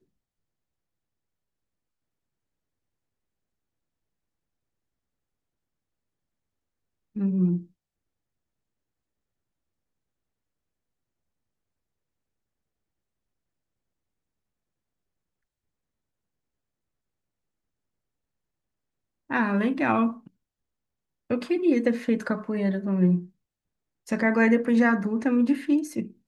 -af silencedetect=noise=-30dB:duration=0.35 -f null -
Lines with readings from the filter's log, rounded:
silence_start: 0.00
silence_end: 7.16 | silence_duration: 7.16
silence_start: 7.58
silence_end: 19.30 | silence_duration: 11.72
silence_start: 20.11
silence_end: 21.30 | silence_duration: 1.19
silence_start: 23.20
silence_end: 24.09 | silence_duration: 0.89